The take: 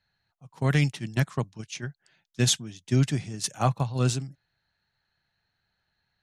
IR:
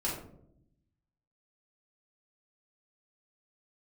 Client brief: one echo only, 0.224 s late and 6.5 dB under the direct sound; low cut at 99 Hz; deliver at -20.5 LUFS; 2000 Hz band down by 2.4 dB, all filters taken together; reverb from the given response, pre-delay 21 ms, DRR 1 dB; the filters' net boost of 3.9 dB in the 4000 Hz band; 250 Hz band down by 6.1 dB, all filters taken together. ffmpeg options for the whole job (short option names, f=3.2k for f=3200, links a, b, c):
-filter_complex "[0:a]highpass=99,equalizer=f=250:t=o:g=-9,equalizer=f=2k:t=o:g=-4.5,equalizer=f=4k:t=o:g=6,aecho=1:1:224:0.473,asplit=2[a][b];[1:a]atrim=start_sample=2205,adelay=21[c];[b][c]afir=irnorm=-1:irlink=0,volume=-6.5dB[d];[a][d]amix=inputs=2:normalize=0,volume=4.5dB"